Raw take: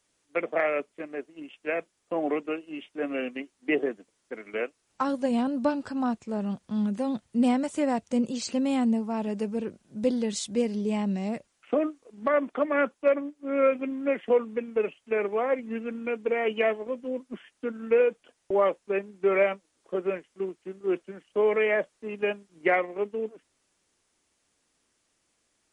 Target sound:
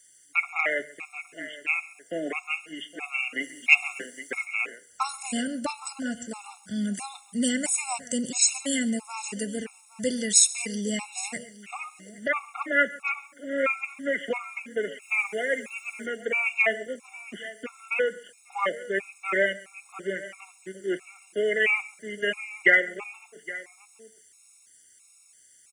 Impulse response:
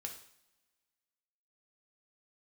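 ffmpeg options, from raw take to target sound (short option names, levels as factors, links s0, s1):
-filter_complex "[0:a]highpass=55,bandreject=f=50:t=h:w=6,bandreject=f=100:t=h:w=6,bandreject=f=150:t=h:w=6,aecho=1:1:816:0.133,asplit=2[s0][s1];[1:a]atrim=start_sample=2205[s2];[s1][s2]afir=irnorm=-1:irlink=0,volume=0.355[s3];[s0][s3]amix=inputs=2:normalize=0,asplit=3[s4][s5][s6];[s4]afade=t=out:st=3.4:d=0.02[s7];[s5]acontrast=84,afade=t=in:st=3.4:d=0.02,afade=t=out:st=4.44:d=0.02[s8];[s6]afade=t=in:st=4.44:d=0.02[s9];[s7][s8][s9]amix=inputs=3:normalize=0,equalizer=f=250:t=o:w=1:g=-4,equalizer=f=500:t=o:w=1:g=-4,equalizer=f=1000:t=o:w=1:g=-5,equalizer=f=2000:t=o:w=1:g=7,equalizer=f=4000:t=o:w=1:g=-5,equalizer=f=8000:t=o:w=1:g=6,asplit=2[s10][s11];[s11]aecho=0:1:135:0.0944[s12];[s10][s12]amix=inputs=2:normalize=0,crystalizer=i=5.5:c=0,asettb=1/sr,asplit=3[s13][s14][s15];[s13]atrim=end=15.024[s16];[s14]atrim=start=15.02:end=16.06,asetpts=PTS-STARTPTS,afade=t=in:d=0.004:c=qsin,afade=t=out:st=1.036:d=0.004:c=qsin,highshelf=f=5200:g=8[s17];[s15]atrim=start=16.056[s18];[s16][s17]acrossfade=d=0.004:c1=hsin:c2=qsin[s19];[s19][s18]acrossfade=d=0.004:c1=qsin:c2=hsin,afftfilt=real='re*gt(sin(2*PI*1.5*pts/sr)*(1-2*mod(floor(b*sr/1024/710),2)),0)':imag='im*gt(sin(2*PI*1.5*pts/sr)*(1-2*mod(floor(b*sr/1024/710),2)),0)':win_size=1024:overlap=0.75"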